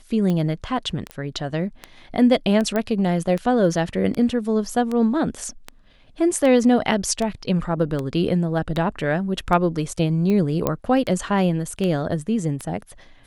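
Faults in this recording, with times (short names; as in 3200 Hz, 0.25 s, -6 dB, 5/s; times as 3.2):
tick 78 rpm -14 dBFS
1.11 pop -17 dBFS
2.76 pop -11 dBFS
10.67 pop -7 dBFS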